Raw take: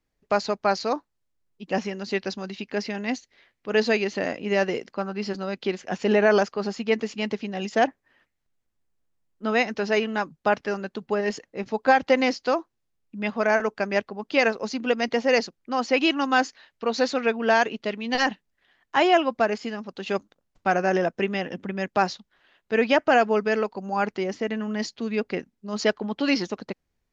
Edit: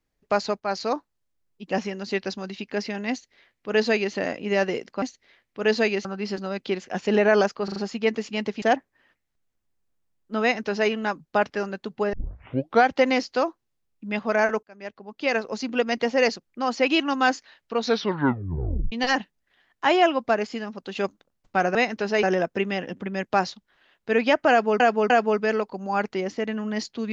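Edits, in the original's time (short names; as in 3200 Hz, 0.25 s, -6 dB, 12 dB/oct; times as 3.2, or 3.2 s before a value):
0.6–0.92 fade in equal-power, from -12.5 dB
3.11–4.14 copy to 5.02
6.61 stutter 0.04 s, 4 plays
7.47–7.73 cut
9.53–10.01 copy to 20.86
11.24 tape start 0.74 s
13.74–14.73 fade in
16.92 tape stop 1.11 s
23.13–23.43 loop, 3 plays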